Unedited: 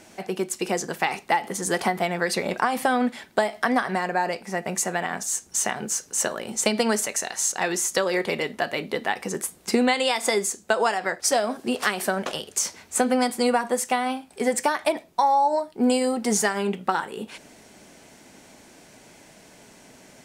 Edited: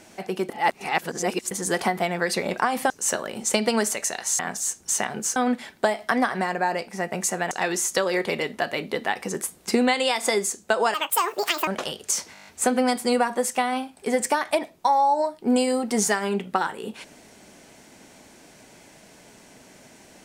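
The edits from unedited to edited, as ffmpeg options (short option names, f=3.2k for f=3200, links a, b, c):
-filter_complex "[0:a]asplit=16[a][b][c][d][e][f][g][h][i][j][k][l][m][n][o][p];[a]atrim=end=0.492[q];[b]atrim=start=0.488:end=1.512,asetpts=PTS-STARTPTS,areverse[r];[c]atrim=start=1.508:end=2.902[s];[d]atrim=start=6.018:end=7.512[t];[e]atrim=start=5.048:end=6.022[u];[f]atrim=start=2.898:end=5.052[v];[g]atrim=start=7.508:end=10.944[w];[h]atrim=start=10.94:end=12.15,asetpts=PTS-STARTPTS,asetrate=72765,aresample=44100[x];[i]atrim=start=12.146:end=12.832[y];[j]atrim=start=12.808:end=12.832[z];[k]atrim=start=12.808:end=12.832[aa];[l]atrim=start=12.808:end=12.832[ab];[m]atrim=start=12.808:end=12.832[ac];[n]atrim=start=12.808:end=12.832[ad];[o]atrim=start=12.808:end=12.832[ae];[p]atrim=start=12.808[af];[q][r]acrossfade=d=0.004:c1=hsin:c2=hsin[ag];[ag][s]acrossfade=d=0.004:c1=hsin:c2=hsin[ah];[ah][t]acrossfade=d=0.004:c1=hsin:c2=hsin[ai];[ai][u]acrossfade=d=0.004:c1=hsin:c2=hsin[aj];[aj][v]acrossfade=d=0.004:c1=hsin:c2=hsin[ak];[ak][w]acrossfade=d=0.004:c1=hsin:c2=hsin[al];[al][x]acrossfade=d=0.004:c1=hsin:c2=hsin[am];[am][y]acrossfade=d=0.004:c1=hsin:c2=hsin[an];[an][z]acrossfade=d=0.004:c1=hsin:c2=hsin[ao];[ao][aa]acrossfade=d=0.004:c1=hsin:c2=hsin[ap];[ap][ab]acrossfade=d=0.004:c1=hsin:c2=hsin[aq];[aq][ac]acrossfade=d=0.004:c1=hsin:c2=hsin[ar];[ar][ad]acrossfade=d=0.004:c1=hsin:c2=hsin[as];[as][ae]acrossfade=d=0.004:c1=hsin:c2=hsin[at];[at][af]acrossfade=d=0.004:c1=hsin:c2=hsin"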